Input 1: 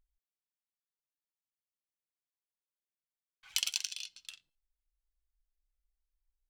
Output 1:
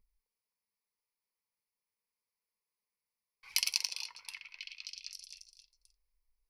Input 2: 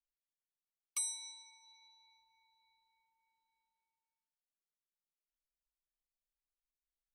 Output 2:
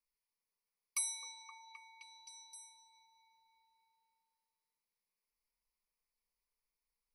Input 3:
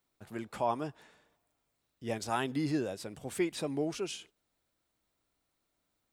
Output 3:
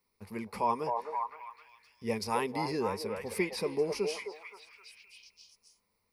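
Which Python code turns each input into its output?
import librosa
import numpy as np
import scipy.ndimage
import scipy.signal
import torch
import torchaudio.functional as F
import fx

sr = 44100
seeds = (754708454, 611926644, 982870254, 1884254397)

y = fx.ripple_eq(x, sr, per_octave=0.87, db=13)
y = fx.echo_stepped(y, sr, ms=261, hz=660.0, octaves=0.7, feedback_pct=70, wet_db=-1.0)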